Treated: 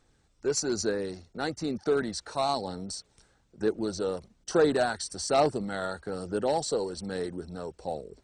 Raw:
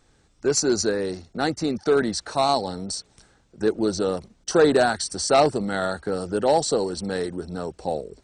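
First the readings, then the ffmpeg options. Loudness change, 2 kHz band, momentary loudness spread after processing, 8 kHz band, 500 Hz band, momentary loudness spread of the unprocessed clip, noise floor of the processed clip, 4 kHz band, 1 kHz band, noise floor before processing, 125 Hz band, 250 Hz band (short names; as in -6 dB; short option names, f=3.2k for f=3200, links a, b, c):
-6.5 dB, -7.0 dB, 12 LU, -7.5 dB, -6.5 dB, 11 LU, -68 dBFS, -7.5 dB, -7.0 dB, -61 dBFS, -6.5 dB, -7.0 dB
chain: -af "aphaser=in_gain=1:out_gain=1:delay=2.2:decay=0.23:speed=1.1:type=sinusoidal,volume=-7.5dB"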